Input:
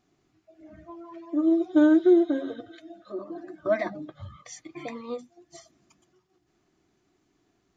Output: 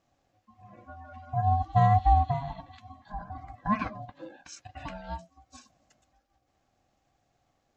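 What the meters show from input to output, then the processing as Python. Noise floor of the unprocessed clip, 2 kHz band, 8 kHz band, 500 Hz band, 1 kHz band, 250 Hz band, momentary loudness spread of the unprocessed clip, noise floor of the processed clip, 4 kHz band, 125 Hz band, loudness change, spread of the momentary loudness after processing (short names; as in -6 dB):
-72 dBFS, -4.5 dB, n/a, -12.0 dB, +14.5 dB, -15.0 dB, 23 LU, -75 dBFS, -2.5 dB, +21.0 dB, -3.0 dB, 22 LU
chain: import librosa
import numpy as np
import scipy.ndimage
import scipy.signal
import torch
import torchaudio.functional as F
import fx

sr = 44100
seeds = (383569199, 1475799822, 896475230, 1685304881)

y = x * np.sin(2.0 * np.pi * 420.0 * np.arange(len(x)) / sr)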